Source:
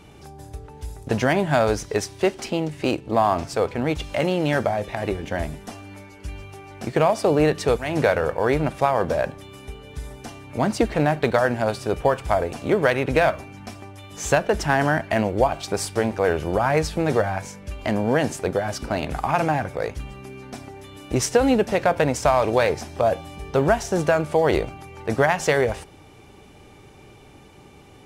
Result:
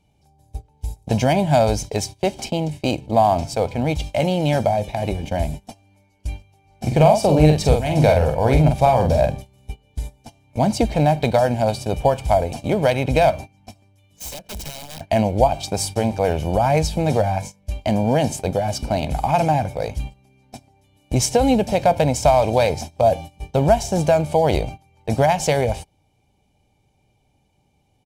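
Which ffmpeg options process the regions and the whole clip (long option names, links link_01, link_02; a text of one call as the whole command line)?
ffmpeg -i in.wav -filter_complex "[0:a]asettb=1/sr,asplit=3[link_01][link_02][link_03];[link_01]atrim=end=6.654[link_04];[link_02]atrim=start=6.65:end=9.68,asetpts=PTS-STARTPTS,afade=type=in:duration=0.004:curve=qsin,afade=type=out:start_time=3.026:duration=0.004:curve=qsin,lowshelf=frequency=100:gain=10,asplit=2[link_05][link_06];[link_06]adelay=46,volume=-4.5dB[link_07];[link_05][link_07]amix=inputs=2:normalize=0,atrim=end_sample=133623[link_08];[link_03]atrim=start=9.676[link_09];[link_04][link_08]acrossfade=duration=0.004:curve1=hsin:curve2=qsin[link_10];[link_10][link_09]acrossfade=duration=0.004:curve1=qsin:curve2=hsin,asettb=1/sr,asplit=3[link_11][link_12][link_13];[link_11]atrim=end=13.824[link_14];[link_12]atrim=start=13.82:end=15.01,asetpts=PTS-STARTPTS,afade=type=in:duration=0.004:curve=qsin,afade=type=out:start_time=1.186:duration=0.004:curve=qsin,equalizer=frequency=780:width_type=o:width=0.43:gain=-9,acompressor=threshold=-28dB:ratio=6:attack=3.2:release=140:knee=1:detection=peak,aeval=exprs='(mod(22.4*val(0)+1,2)-1)/22.4':channel_layout=same[link_15];[link_13]atrim=start=15.006[link_16];[link_14][link_15]acrossfade=duration=0.004:curve1=hsin:curve2=qsin[link_17];[link_17][link_16]acrossfade=duration=0.004:curve1=qsin:curve2=hsin,agate=range=-20dB:threshold=-33dB:ratio=16:detection=peak,equalizer=frequency=1500:width=1.9:gain=-15,aecho=1:1:1.3:0.54,volume=3.5dB" out.wav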